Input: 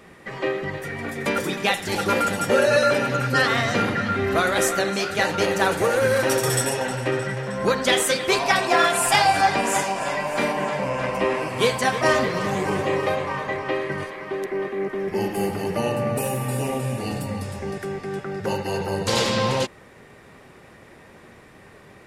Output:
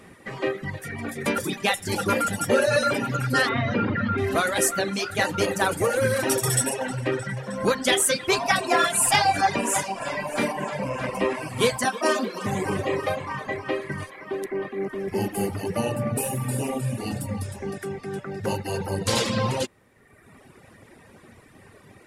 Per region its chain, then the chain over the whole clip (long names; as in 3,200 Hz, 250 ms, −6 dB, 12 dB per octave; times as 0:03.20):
0:03.49–0:04.18: high-frequency loss of the air 260 metres + notch filter 760 Hz + envelope flattener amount 50%
0:11.85–0:12.46: Chebyshev high-pass filter 200 Hz, order 5 + notch filter 2,000 Hz, Q 5.2
whole clip: reverb reduction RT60 1.2 s; graphic EQ with 15 bands 100 Hz +6 dB, 250 Hz +4 dB, 10,000 Hz +7 dB; level −1.5 dB